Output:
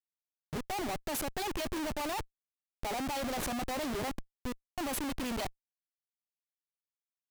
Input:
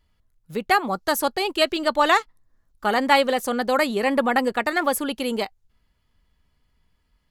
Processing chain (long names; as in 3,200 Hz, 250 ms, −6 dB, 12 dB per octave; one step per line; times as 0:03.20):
phaser with its sweep stopped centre 310 Hz, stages 8
0:04.11–0:04.78: resonances in every octave B, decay 0.59 s
comparator with hysteresis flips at −35 dBFS
level −7 dB